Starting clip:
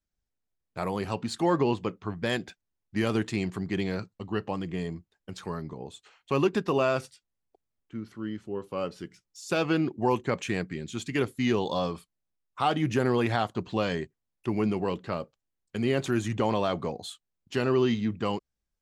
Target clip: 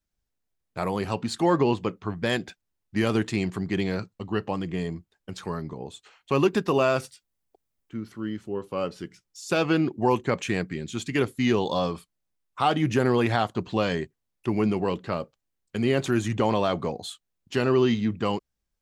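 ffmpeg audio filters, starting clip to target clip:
ffmpeg -i in.wav -filter_complex "[0:a]asettb=1/sr,asplit=3[link_01][link_02][link_03];[link_01]atrim=end=6.424[link_04];[link_02]atrim=start=6.42:end=8.52,asetpts=PTS-STARTPTS,afade=type=in:duration=0.004:curve=qsin,afade=type=out:start_time=2.096:duration=0.004:curve=qsin,highshelf=frequency=10000:gain=7.5[link_05];[link_03]atrim=start=8.516[link_06];[link_04][link_05]acrossfade=duration=0.004:curve1=hsin:curve2=qsin[link_07];[link_07][link_06]acrossfade=duration=0.004:curve1=qsin:curve2=hsin,volume=3dB" out.wav

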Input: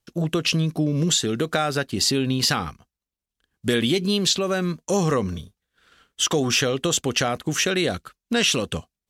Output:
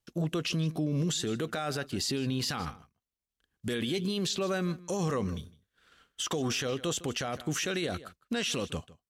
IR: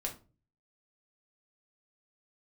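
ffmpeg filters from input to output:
-filter_complex "[0:a]asplit=2[link_01][link_02];[link_02]adelay=157.4,volume=-21dB,highshelf=frequency=4000:gain=-3.54[link_03];[link_01][link_03]amix=inputs=2:normalize=0,alimiter=limit=-17.5dB:level=0:latency=1:release=21,volume=-5.5dB"

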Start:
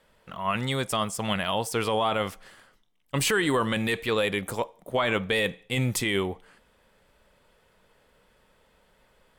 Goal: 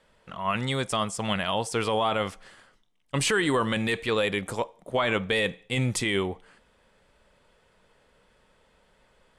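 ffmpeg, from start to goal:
ffmpeg -i in.wav -af "lowpass=frequency=10000:width=0.5412,lowpass=frequency=10000:width=1.3066" out.wav

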